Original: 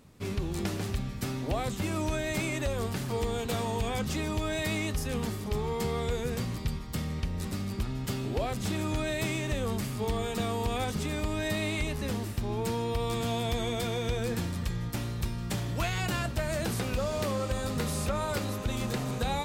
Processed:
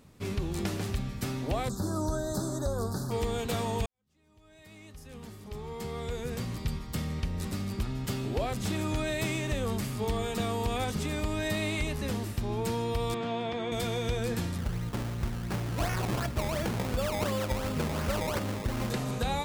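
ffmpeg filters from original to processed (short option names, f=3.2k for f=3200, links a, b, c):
-filter_complex "[0:a]asplit=3[a][b][c];[a]afade=t=out:st=1.68:d=0.02[d];[b]asuperstop=centerf=2500:order=8:qfactor=1,afade=t=in:st=1.68:d=0.02,afade=t=out:st=3.1:d=0.02[e];[c]afade=t=in:st=3.1:d=0.02[f];[d][e][f]amix=inputs=3:normalize=0,asettb=1/sr,asplit=3[g][h][i];[g]atrim=end=13.144[j];[h]atrim=start=13.14:end=13.72,asetpts=PTS-STARTPTS,afade=t=in:d=0.004:c=qsin,afade=t=out:st=0.576:d=0.004:c=qsin,highpass=190,lowpass=2.8k[k];[i]atrim=start=13.716[l];[j][k]acrossfade=d=0.004:c1=hsin:c2=qsin[m];[m][l]acrossfade=d=0.004:c1=qsin:c2=hsin,asettb=1/sr,asplit=3[n][o][p];[n]atrim=end=14.584[q];[o]atrim=start=14.58:end=18.9,asetpts=PTS-STARTPTS,afade=t=in:d=0.004:c=qsin,afade=t=out:st=4.316:d=0.004:c=qsin,acrusher=samples=21:mix=1:aa=0.000001:lfo=1:lforange=21:lforate=2.8[r];[p]atrim=start=18.896[s];[q][r]acrossfade=d=0.004:c1=hsin:c2=qsin[t];[t][s]acrossfade=d=0.004:c1=qsin:c2=hsin,asplit=2[u][v];[u]atrim=end=3.86,asetpts=PTS-STARTPTS,afade=t=out:st=3.856:d=0.004:c=hsin[w];[v]atrim=start=3.86,asetpts=PTS-STARTPTS,afade=t=in:d=2.89:c=qua[x];[w][x]concat=n=2:v=0:a=1"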